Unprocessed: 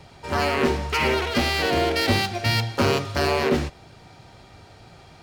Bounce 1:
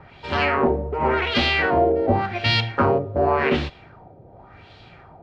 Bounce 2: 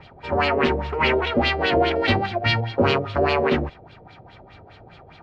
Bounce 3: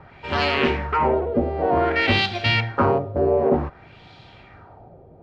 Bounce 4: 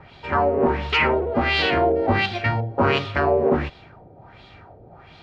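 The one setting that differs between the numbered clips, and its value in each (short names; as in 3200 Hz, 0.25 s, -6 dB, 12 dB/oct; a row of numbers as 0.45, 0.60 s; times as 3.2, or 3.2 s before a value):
LFO low-pass, rate: 0.89, 4.9, 0.54, 1.4 Hz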